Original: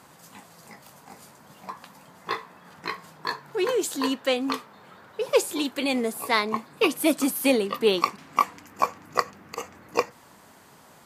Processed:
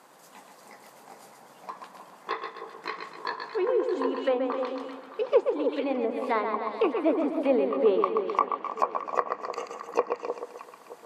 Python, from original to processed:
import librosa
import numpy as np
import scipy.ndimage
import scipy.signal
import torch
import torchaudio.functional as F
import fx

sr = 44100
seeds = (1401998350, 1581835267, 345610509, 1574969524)

y = fx.echo_feedback(x, sr, ms=129, feedback_pct=44, wet_db=-6.0)
y = fx.env_lowpass_down(y, sr, base_hz=1400.0, full_db=-21.0)
y = scipy.signal.sosfilt(scipy.signal.butter(2, 450.0, 'highpass', fs=sr, output='sos'), y)
y = fx.tilt_shelf(y, sr, db=5.0, hz=710.0)
y = fx.echo_alternate(y, sr, ms=309, hz=950.0, feedback_pct=50, wet_db=-7)